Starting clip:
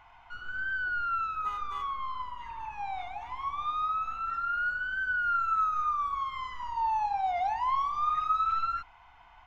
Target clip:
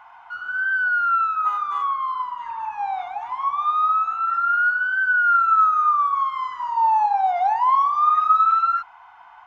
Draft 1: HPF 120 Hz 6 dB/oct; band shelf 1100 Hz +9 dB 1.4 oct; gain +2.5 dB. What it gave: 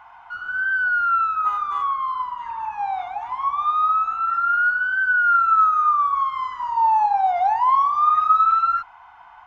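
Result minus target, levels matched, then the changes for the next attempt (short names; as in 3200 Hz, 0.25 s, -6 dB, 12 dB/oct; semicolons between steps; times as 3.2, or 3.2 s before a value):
125 Hz band +7.0 dB
change: HPF 360 Hz 6 dB/oct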